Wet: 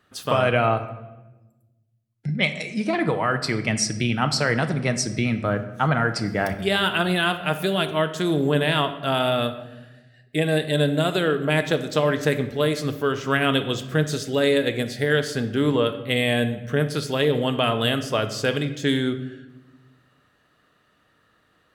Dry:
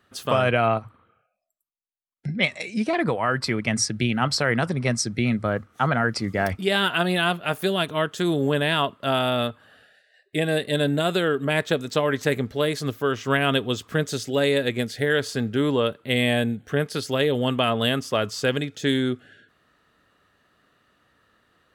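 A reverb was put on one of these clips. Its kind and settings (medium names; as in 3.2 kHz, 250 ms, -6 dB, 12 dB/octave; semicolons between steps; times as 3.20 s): simulated room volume 560 m³, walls mixed, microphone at 0.49 m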